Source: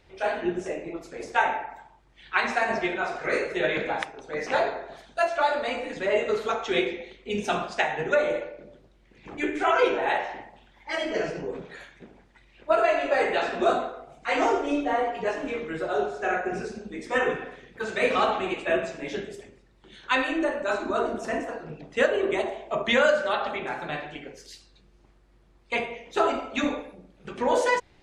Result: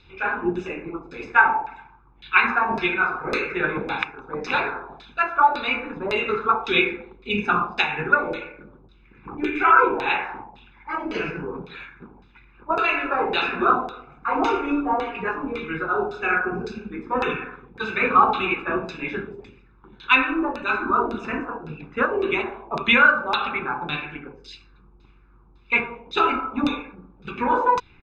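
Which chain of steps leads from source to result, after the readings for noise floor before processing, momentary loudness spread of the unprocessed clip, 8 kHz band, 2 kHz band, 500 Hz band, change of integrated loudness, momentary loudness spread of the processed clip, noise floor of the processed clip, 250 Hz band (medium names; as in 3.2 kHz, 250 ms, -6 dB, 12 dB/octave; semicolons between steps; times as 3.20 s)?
-59 dBFS, 15 LU, no reading, +6.5 dB, -2.5 dB, +4.5 dB, 16 LU, -53 dBFS, +4.0 dB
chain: LFO low-pass saw down 1.8 Hz 700–4200 Hz; comb 0.8 ms, depth 81%; trim +1 dB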